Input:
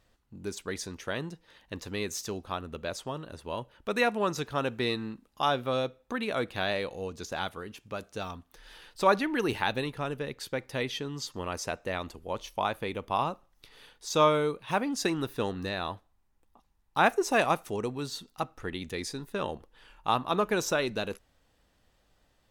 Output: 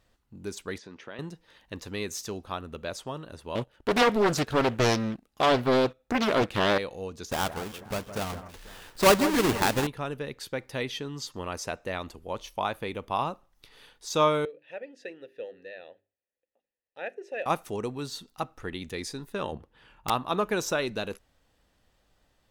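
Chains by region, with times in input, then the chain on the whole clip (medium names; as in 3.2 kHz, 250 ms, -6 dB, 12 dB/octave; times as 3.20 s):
0.78–1.19 s: compression 3:1, threshold -39 dBFS + band-pass 170–3400 Hz
3.55–6.78 s: band-stop 990 Hz, Q 6.1 + waveshaping leveller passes 2 + loudspeaker Doppler distortion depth 0.81 ms
7.31–9.87 s: square wave that keeps the level + echo whose repeats swap between lows and highs 163 ms, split 2 kHz, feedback 57%, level -11 dB
14.45–17.46 s: vowel filter e + hum notches 50/100/150/200/250/300/350/400 Hz
19.52–20.10 s: high-pass 62 Hz + tone controls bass +7 dB, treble -7 dB + integer overflow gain 21 dB
whole clip: none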